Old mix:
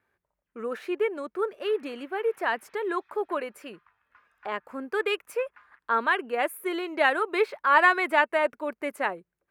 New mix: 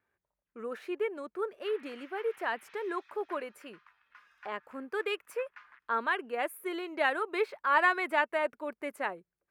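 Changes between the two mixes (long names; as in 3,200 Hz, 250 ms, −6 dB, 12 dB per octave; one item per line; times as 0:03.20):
speech −6.0 dB
background: add spectral tilt +4.5 dB per octave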